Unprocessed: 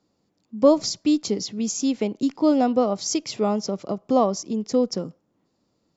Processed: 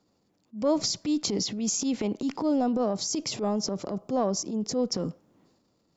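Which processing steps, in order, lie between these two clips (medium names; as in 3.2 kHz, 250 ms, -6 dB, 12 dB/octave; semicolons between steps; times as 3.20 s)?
2.41–4.79 s: peaking EQ 2.3 kHz -6.5 dB 1.8 oct; transient shaper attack -10 dB, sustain +7 dB; compression 2:1, threshold -26 dBFS, peak gain reduction 8 dB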